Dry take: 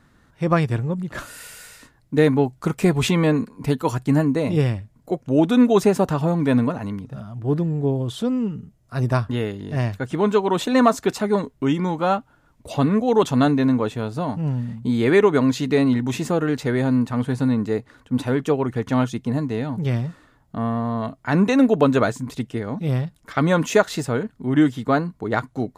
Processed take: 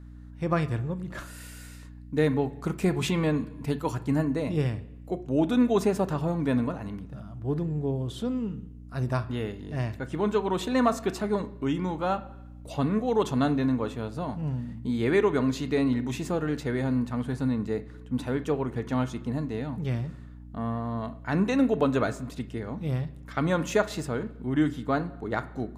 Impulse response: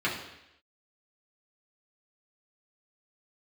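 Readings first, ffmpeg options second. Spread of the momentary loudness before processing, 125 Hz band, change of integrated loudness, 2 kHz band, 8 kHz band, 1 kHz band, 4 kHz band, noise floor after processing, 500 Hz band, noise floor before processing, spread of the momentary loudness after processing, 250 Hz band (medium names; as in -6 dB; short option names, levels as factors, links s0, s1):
11 LU, -7.0 dB, -7.5 dB, -7.0 dB, -7.5 dB, -7.5 dB, -7.5 dB, -44 dBFS, -7.5 dB, -59 dBFS, 11 LU, -7.0 dB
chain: -filter_complex "[0:a]aeval=exprs='val(0)+0.0158*(sin(2*PI*60*n/s)+sin(2*PI*2*60*n/s)/2+sin(2*PI*3*60*n/s)/3+sin(2*PI*4*60*n/s)/4+sin(2*PI*5*60*n/s)/5)':c=same,asplit=2[s0][s1];[1:a]atrim=start_sample=2205,adelay=28[s2];[s1][s2]afir=irnorm=-1:irlink=0,volume=0.0708[s3];[s0][s3]amix=inputs=2:normalize=0,volume=0.422"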